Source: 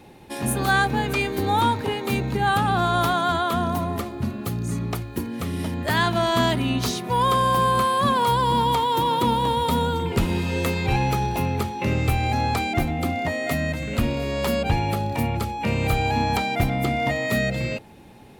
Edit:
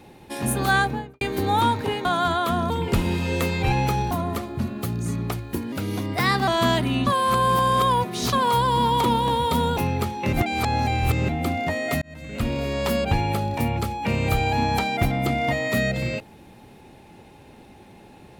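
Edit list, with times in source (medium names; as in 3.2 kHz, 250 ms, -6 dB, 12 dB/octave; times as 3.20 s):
0.76–1.21 s: studio fade out
2.05–3.09 s: delete
5.35–6.22 s: speed 115%
6.81–8.07 s: reverse
8.78–9.21 s: delete
9.94–11.35 s: move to 3.74 s
11.91–12.87 s: reverse
13.60–14.18 s: fade in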